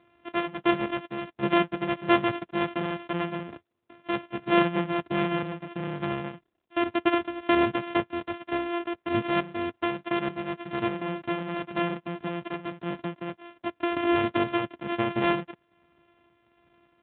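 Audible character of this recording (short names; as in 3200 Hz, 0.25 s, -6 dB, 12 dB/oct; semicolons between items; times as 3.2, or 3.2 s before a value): a buzz of ramps at a fixed pitch in blocks of 128 samples; random-step tremolo; AMR-NB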